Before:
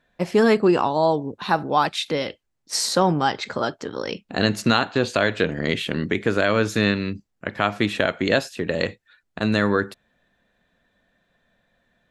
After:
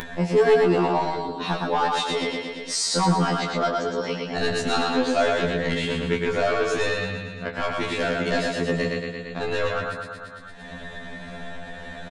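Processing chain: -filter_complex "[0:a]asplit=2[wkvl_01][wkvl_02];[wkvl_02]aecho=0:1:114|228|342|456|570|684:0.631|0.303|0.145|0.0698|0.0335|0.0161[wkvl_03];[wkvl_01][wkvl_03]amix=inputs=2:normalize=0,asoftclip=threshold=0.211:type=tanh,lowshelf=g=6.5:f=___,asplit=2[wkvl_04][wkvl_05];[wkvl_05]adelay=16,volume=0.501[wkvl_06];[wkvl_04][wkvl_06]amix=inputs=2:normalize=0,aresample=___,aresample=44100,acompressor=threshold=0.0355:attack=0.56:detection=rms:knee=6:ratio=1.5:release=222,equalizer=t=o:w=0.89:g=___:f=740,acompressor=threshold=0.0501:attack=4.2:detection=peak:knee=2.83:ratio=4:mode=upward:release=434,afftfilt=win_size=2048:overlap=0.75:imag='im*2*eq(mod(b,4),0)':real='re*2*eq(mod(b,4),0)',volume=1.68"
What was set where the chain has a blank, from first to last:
80, 22050, 3.5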